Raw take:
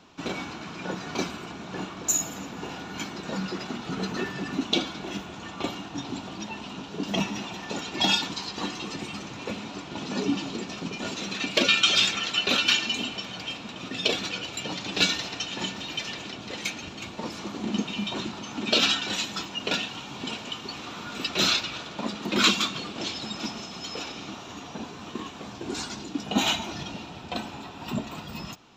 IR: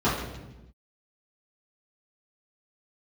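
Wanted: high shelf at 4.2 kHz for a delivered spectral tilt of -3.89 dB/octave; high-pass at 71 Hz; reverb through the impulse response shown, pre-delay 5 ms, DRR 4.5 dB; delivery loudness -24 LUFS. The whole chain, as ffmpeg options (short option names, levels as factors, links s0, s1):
-filter_complex "[0:a]highpass=71,highshelf=f=4200:g=-7,asplit=2[s0][s1];[1:a]atrim=start_sample=2205,adelay=5[s2];[s1][s2]afir=irnorm=-1:irlink=0,volume=0.0944[s3];[s0][s3]amix=inputs=2:normalize=0,volume=1.78"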